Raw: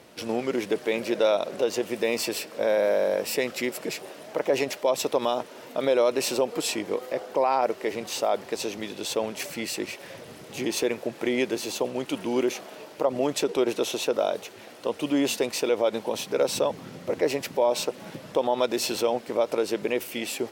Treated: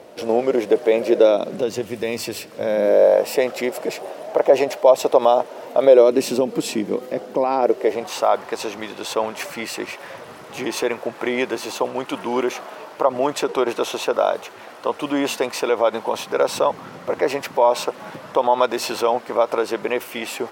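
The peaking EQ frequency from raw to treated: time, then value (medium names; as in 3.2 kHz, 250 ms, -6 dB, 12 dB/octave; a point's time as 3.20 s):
peaking EQ +12.5 dB 1.7 oct
1.04 s 570 Hz
1.90 s 89 Hz
2.57 s 89 Hz
3.10 s 680 Hz
5.80 s 680 Hz
6.27 s 210 Hz
7.43 s 210 Hz
8.16 s 1.1 kHz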